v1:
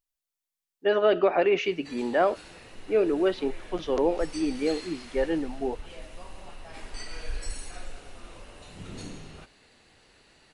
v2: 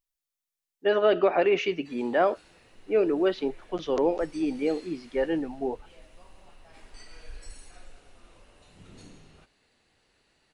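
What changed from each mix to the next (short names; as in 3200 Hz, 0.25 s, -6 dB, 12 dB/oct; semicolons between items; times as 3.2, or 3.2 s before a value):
background -9.5 dB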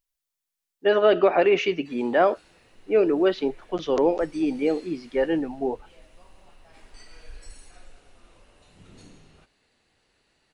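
speech +3.5 dB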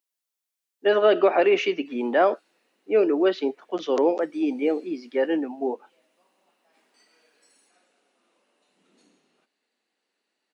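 background -10.5 dB; master: add steep high-pass 210 Hz 36 dB/oct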